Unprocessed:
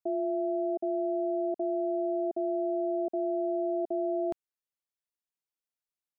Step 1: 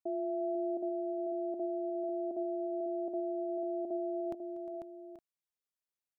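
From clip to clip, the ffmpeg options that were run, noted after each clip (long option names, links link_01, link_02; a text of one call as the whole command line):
ffmpeg -i in.wav -af "aecho=1:1:241|355|495|833|865:0.112|0.178|0.473|0.2|0.112,volume=-5dB" out.wav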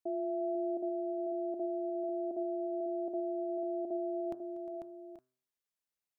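ffmpeg -i in.wav -af "bandreject=frequency=127.6:width_type=h:width=4,bandreject=frequency=255.2:width_type=h:width=4,bandreject=frequency=382.8:width_type=h:width=4,bandreject=frequency=510.4:width_type=h:width=4,bandreject=frequency=638:width_type=h:width=4,bandreject=frequency=765.6:width_type=h:width=4,bandreject=frequency=893.2:width_type=h:width=4,bandreject=frequency=1020.8:width_type=h:width=4,bandreject=frequency=1148.4:width_type=h:width=4,bandreject=frequency=1276:width_type=h:width=4,bandreject=frequency=1403.6:width_type=h:width=4,bandreject=frequency=1531.2:width_type=h:width=4,bandreject=frequency=1658.8:width_type=h:width=4" out.wav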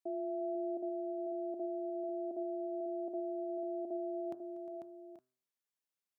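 ffmpeg -i in.wav -af "highpass=110,volume=-3dB" out.wav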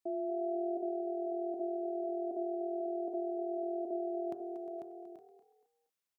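ffmpeg -i in.wav -filter_complex "[0:a]asplit=4[link_01][link_02][link_03][link_04];[link_02]adelay=235,afreqshift=41,volume=-11.5dB[link_05];[link_03]adelay=470,afreqshift=82,volume=-21.4dB[link_06];[link_04]adelay=705,afreqshift=123,volume=-31.3dB[link_07];[link_01][link_05][link_06][link_07]amix=inputs=4:normalize=0,volume=2dB" out.wav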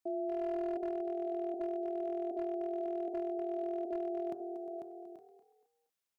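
ffmpeg -i in.wav -af "asoftclip=type=hard:threshold=-30dB" out.wav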